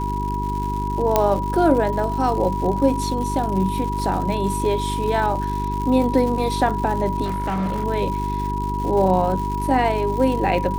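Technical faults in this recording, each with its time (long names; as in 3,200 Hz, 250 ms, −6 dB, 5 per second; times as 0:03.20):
surface crackle 220 per second −28 dBFS
mains hum 50 Hz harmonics 8 −26 dBFS
whistle 970 Hz −25 dBFS
0:01.16: click −2 dBFS
0:07.24–0:07.85: clipping −19.5 dBFS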